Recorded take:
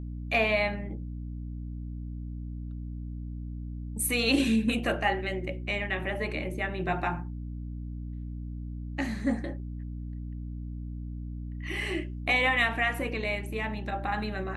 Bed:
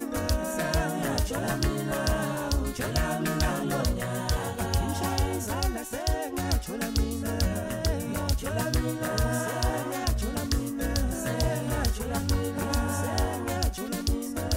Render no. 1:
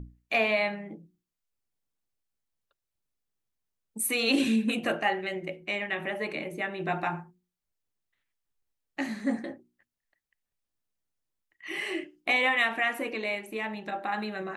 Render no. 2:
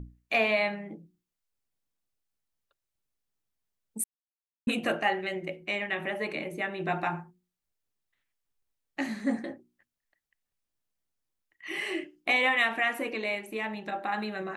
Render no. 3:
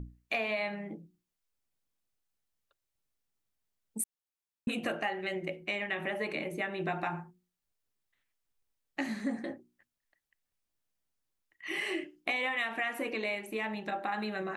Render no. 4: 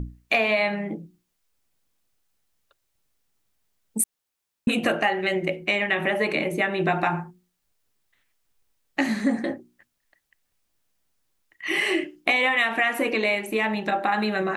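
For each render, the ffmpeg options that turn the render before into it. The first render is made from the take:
-af "bandreject=f=60:t=h:w=6,bandreject=f=120:t=h:w=6,bandreject=f=180:t=h:w=6,bandreject=f=240:t=h:w=6,bandreject=f=300:t=h:w=6,bandreject=f=360:t=h:w=6"
-filter_complex "[0:a]asplit=3[a][b][c];[a]atrim=end=4.04,asetpts=PTS-STARTPTS,afade=t=out:st=4.036:d=0.004:c=hsin[d];[b]atrim=start=4.04:end=4.67,asetpts=PTS-STARTPTS,volume=0[e];[c]atrim=start=4.67,asetpts=PTS-STARTPTS,afade=t=in:d=0.004:c=hsin[f];[d][e][f]concat=n=3:v=0:a=1"
-af "acompressor=threshold=-30dB:ratio=5"
-af "volume=11dB"

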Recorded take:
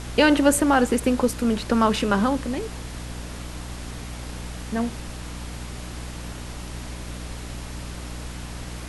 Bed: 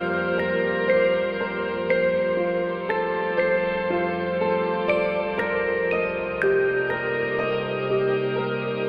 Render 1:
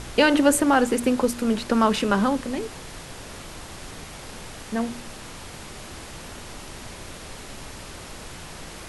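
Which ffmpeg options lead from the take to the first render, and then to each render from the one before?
-af "bandreject=f=60:t=h:w=4,bandreject=f=120:t=h:w=4,bandreject=f=180:t=h:w=4,bandreject=f=240:t=h:w=4,bandreject=f=300:t=h:w=4"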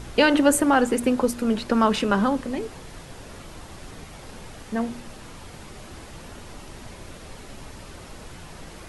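-af "afftdn=nr=6:nf=-40"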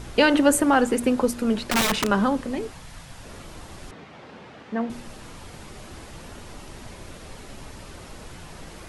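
-filter_complex "[0:a]asettb=1/sr,asplit=3[a][b][c];[a]atrim=end=1.624[d];[b]atrim=start=1.62:end=2.08,asetpts=PTS-STARTPTS,afade=t=in:d=0.004:c=qsin,afade=t=out:st=0.456:d=0.004:c=qsin,aeval=exprs='(mod(5.96*val(0)+1,2)-1)/5.96':c=same[e];[c]atrim=start=2.076[f];[d][e]acrossfade=d=0.004:c1=hsin:c2=qsin[g];[g][f]acrossfade=d=0.004:c1=qsin:c2=hsin,asettb=1/sr,asplit=3[h][i][j];[h]atrim=end=2.714[k];[i]atrim=start=2.71:end=3.24,asetpts=PTS-STARTPTS,afade=t=in:d=0.004:c=qsin,afade=t=out:st=0.526:d=0.004:c=qsin,equalizer=f=390:w=1.5:g=-12[l];[j]atrim=start=3.236[m];[k][l]acrossfade=d=0.004:c1=hsin:c2=qsin[n];[n][m]acrossfade=d=0.004:c1=qsin:c2=hsin,asettb=1/sr,asplit=3[o][p][q];[o]atrim=end=3.914[r];[p]atrim=start=3.91:end=4.9,asetpts=PTS-STARTPTS,afade=t=in:d=0.004:c=qsin,afade=t=out:st=0.986:d=0.004:c=qsin,highpass=160,lowpass=3.1k[s];[q]atrim=start=4.896[t];[r][s]acrossfade=d=0.004:c1=hsin:c2=qsin[u];[u][t]acrossfade=d=0.004:c1=qsin:c2=hsin"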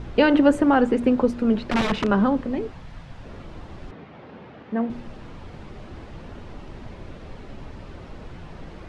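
-af "lowpass=3.6k,tiltshelf=f=750:g=3.5"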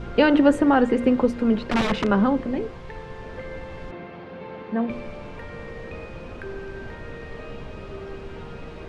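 -filter_complex "[1:a]volume=-16dB[a];[0:a][a]amix=inputs=2:normalize=0"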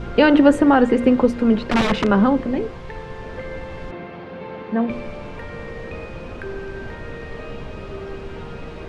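-af "volume=4dB,alimiter=limit=-3dB:level=0:latency=1"

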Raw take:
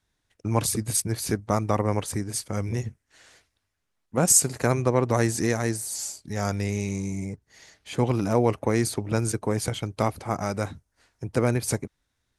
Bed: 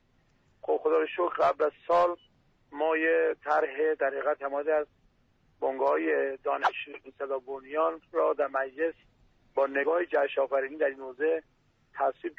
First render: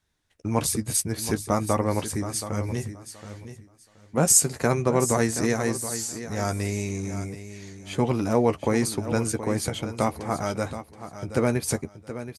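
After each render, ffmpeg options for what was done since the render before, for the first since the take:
-filter_complex "[0:a]asplit=2[a][b];[b]adelay=13,volume=-9dB[c];[a][c]amix=inputs=2:normalize=0,asplit=2[d][e];[e]aecho=0:1:725|1450|2175:0.251|0.0502|0.01[f];[d][f]amix=inputs=2:normalize=0"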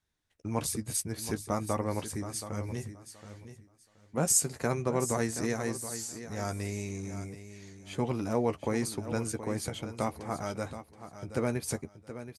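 -af "volume=-7.5dB"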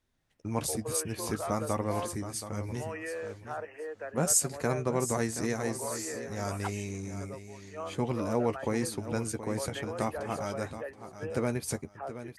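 -filter_complex "[1:a]volume=-12.5dB[a];[0:a][a]amix=inputs=2:normalize=0"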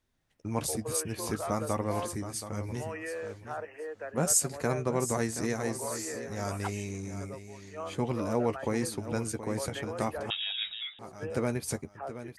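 -filter_complex "[0:a]asettb=1/sr,asplit=3[a][b][c];[a]atrim=end=10.304[d];[b]atrim=start=10.3:end=10.99,asetpts=PTS-STARTPTS,afade=t=in:d=0.004:c=qsin,afade=t=out:st=0.686:d=0.004:c=qsin,lowpass=f=3.3k:t=q:w=0.5098,lowpass=f=3.3k:t=q:w=0.6013,lowpass=f=3.3k:t=q:w=0.9,lowpass=f=3.3k:t=q:w=2.563,afreqshift=-3900[e];[c]atrim=start=10.986[f];[d][e]acrossfade=d=0.004:c1=hsin:c2=qsin[g];[g][f]acrossfade=d=0.004:c1=qsin:c2=hsin"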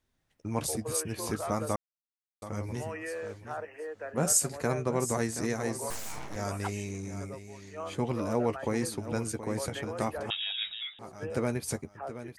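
-filter_complex "[0:a]asettb=1/sr,asplit=3[a][b][c];[a]atrim=end=3.944[d];[b]atrim=start=3.94:end=4.49,asetpts=PTS-STARTPTS,afade=t=in:d=0.004:c=qsin,afade=t=out:st=0.546:d=0.004:c=qsin,asplit=2[e][f];[f]adelay=41,volume=-14dB[g];[e][g]amix=inputs=2:normalize=0,atrim=end_sample=24255[h];[c]atrim=start=4.486[i];[d][h]acrossfade=d=0.004:c1=hsin:c2=qsin[j];[j][i]acrossfade=d=0.004:c1=qsin:c2=hsin,asettb=1/sr,asplit=3[k][l][m];[k]atrim=end=5.904[n];[l]atrim=start=5.9:end=6.36,asetpts=PTS-STARTPTS,afade=t=in:d=0.004:c=qsin,afade=t=out:st=0.456:d=0.004:c=qsin,aeval=exprs='abs(val(0))':c=same[o];[m]atrim=start=6.356[p];[n][o]acrossfade=d=0.004:c1=hsin:c2=qsin[q];[q][p]acrossfade=d=0.004:c1=qsin:c2=hsin,asplit=3[r][s][t];[r]atrim=end=1.76,asetpts=PTS-STARTPTS,afade=t=out:st=1.756:d=0.004:c=hsin[u];[s]atrim=start=1.76:end=2.42,asetpts=PTS-STARTPTS,volume=0[v];[t]atrim=start=2.42,asetpts=PTS-STARTPTS,afade=t=in:d=0.004:c=hsin[w];[u][v][w]concat=n=3:v=0:a=1"

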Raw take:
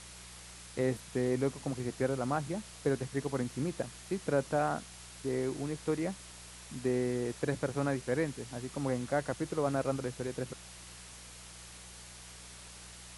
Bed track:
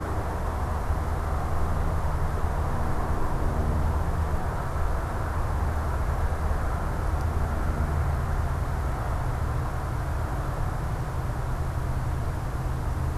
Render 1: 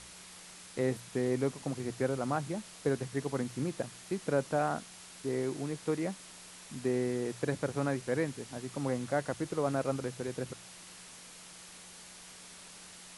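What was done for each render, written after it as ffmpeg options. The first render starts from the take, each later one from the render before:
-af "bandreject=f=60:t=h:w=4,bandreject=f=120:t=h:w=4"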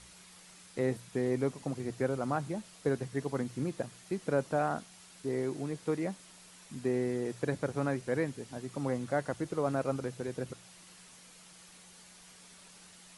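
-af "afftdn=nr=6:nf=-51"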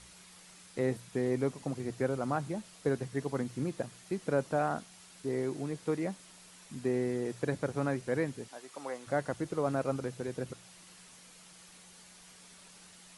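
-filter_complex "[0:a]asettb=1/sr,asplit=3[a][b][c];[a]atrim=end=8.484[d];[b]atrim=start=8.48:end=9.07,asetpts=PTS-STARTPTS,afade=t=in:d=0.004:c=qsin,afade=t=out:st=0.586:d=0.004:c=qsin,highpass=570[e];[c]atrim=start=9.066[f];[d][e]acrossfade=d=0.004:c1=hsin:c2=qsin[g];[g][f]acrossfade=d=0.004:c1=qsin:c2=hsin"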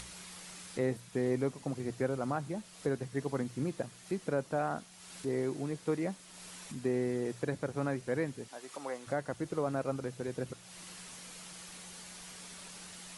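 -af "acompressor=mode=upward:threshold=-40dB:ratio=2.5,alimiter=limit=-21dB:level=0:latency=1:release=452"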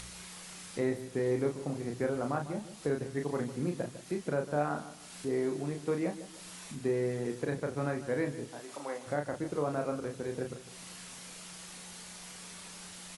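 -filter_complex "[0:a]asplit=2[a][b];[b]adelay=34,volume=-5dB[c];[a][c]amix=inputs=2:normalize=0,asplit=2[d][e];[e]adelay=152,lowpass=f=2k:p=1,volume=-13dB,asplit=2[f][g];[g]adelay=152,lowpass=f=2k:p=1,volume=0.33,asplit=2[h][i];[i]adelay=152,lowpass=f=2k:p=1,volume=0.33[j];[d][f][h][j]amix=inputs=4:normalize=0"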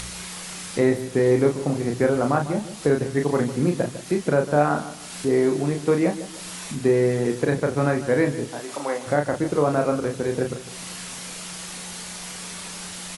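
-af "volume=12dB"

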